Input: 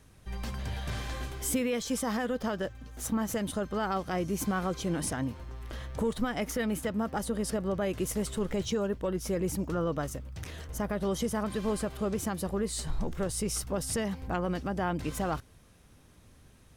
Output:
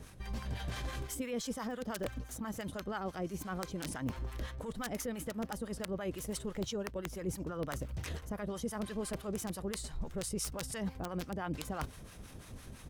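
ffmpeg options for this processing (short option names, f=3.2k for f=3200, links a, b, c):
-filter_complex "[0:a]areverse,acompressor=threshold=-45dB:ratio=6,areverse,aeval=exprs='(mod(63.1*val(0)+1,2)-1)/63.1':c=same,atempo=1.3,acrossover=split=720[a][b];[a]aeval=exprs='val(0)*(1-0.7/2+0.7/2*cos(2*PI*5.9*n/s))':c=same[c];[b]aeval=exprs='val(0)*(1-0.7/2-0.7/2*cos(2*PI*5.9*n/s))':c=same[d];[c][d]amix=inputs=2:normalize=0,volume=11.5dB"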